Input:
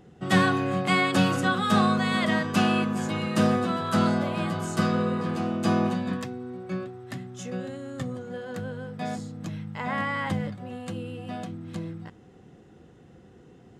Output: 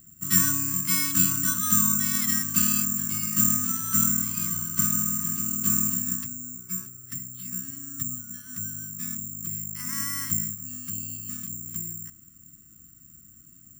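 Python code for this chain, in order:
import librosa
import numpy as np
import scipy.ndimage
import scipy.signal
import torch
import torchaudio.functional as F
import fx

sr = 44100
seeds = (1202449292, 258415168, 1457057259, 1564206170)

y = scipy.signal.sosfilt(scipy.signal.ellip(3, 1.0, 40, [290.0, 1200.0], 'bandstop', fs=sr, output='sos'), x)
y = fx.low_shelf(y, sr, hz=82.0, db=10.0)
y = (np.kron(scipy.signal.resample_poly(y, 1, 6), np.eye(6)[0]) * 6)[:len(y)]
y = y * 10.0 ** (-7.5 / 20.0)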